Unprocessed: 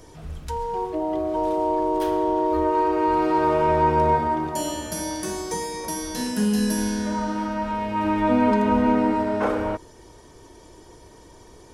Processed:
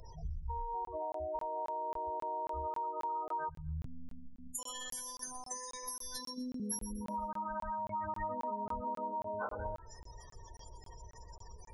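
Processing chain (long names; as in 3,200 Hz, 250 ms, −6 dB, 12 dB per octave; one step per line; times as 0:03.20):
0:03.49–0:04.59: time-frequency box erased 210–6,500 Hz
hum removal 330.4 Hz, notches 9
gate on every frequency bin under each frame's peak −15 dB strong
guitar amp tone stack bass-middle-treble 10-0-10
downward compressor, threshold −44 dBFS, peak gain reduction 13 dB
0:03.85–0:06.60: phases set to zero 252 Hz
delay with a high-pass on its return 124 ms, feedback 32%, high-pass 3,300 Hz, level −10.5 dB
regular buffer underruns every 0.27 s, samples 1,024, zero, from 0:00.85
level +8 dB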